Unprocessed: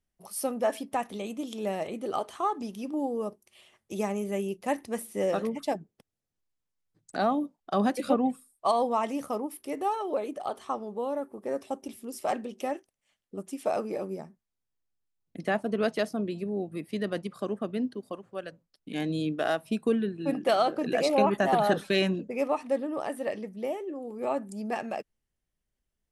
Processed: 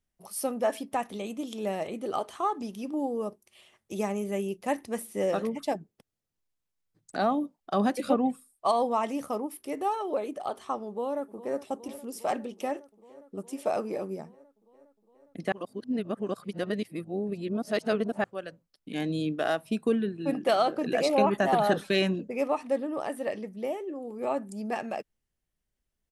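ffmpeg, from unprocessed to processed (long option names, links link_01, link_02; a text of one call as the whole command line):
ffmpeg -i in.wav -filter_complex "[0:a]asplit=2[link_01][link_02];[link_02]afade=type=in:start_time=10.87:duration=0.01,afade=type=out:start_time=11.59:duration=0.01,aecho=0:1:410|820|1230|1640|2050|2460|2870|3280|3690|4100|4510|4920:0.16788|0.134304|0.107443|0.0859548|0.0687638|0.0550111|0.0440088|0.0352071|0.0281657|0.0225325|0.018026|0.0144208[link_03];[link_01][link_03]amix=inputs=2:normalize=0,asplit=3[link_04][link_05][link_06];[link_04]atrim=end=15.522[link_07];[link_05]atrim=start=15.518:end=18.242,asetpts=PTS-STARTPTS,areverse[link_08];[link_06]atrim=start=18.238[link_09];[link_07][link_08]acrossfade=duration=0.004:curve1=hsin:curve2=hsin[link_10];[link_10][link_09]acrossfade=duration=0.004:curve1=hsin:curve2=hsin" out.wav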